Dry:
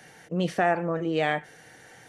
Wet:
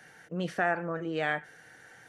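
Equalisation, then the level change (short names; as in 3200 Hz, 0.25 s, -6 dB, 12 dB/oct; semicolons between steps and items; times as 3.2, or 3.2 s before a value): bell 1500 Hz +8.5 dB 0.54 oct; -6.5 dB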